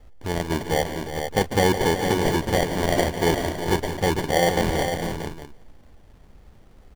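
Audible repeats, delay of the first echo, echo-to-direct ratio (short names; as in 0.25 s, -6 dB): 4, 0.145 s, -4.0 dB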